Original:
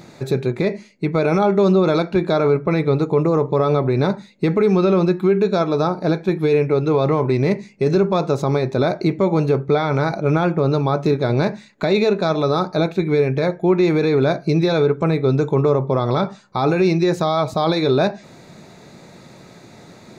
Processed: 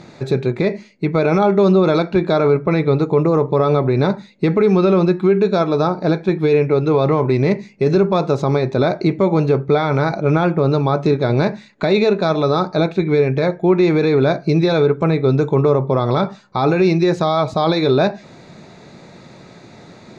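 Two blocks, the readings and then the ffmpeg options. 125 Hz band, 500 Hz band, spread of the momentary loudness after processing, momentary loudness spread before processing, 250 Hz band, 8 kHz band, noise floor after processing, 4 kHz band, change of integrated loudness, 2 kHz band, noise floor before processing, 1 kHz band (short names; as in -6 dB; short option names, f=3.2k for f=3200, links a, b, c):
+2.0 dB, +2.0 dB, 5 LU, 5 LU, +2.0 dB, n/a, -43 dBFS, +1.5 dB, +2.0 dB, +2.0 dB, -45 dBFS, +2.0 dB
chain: -af "lowpass=5.9k,volume=2dB"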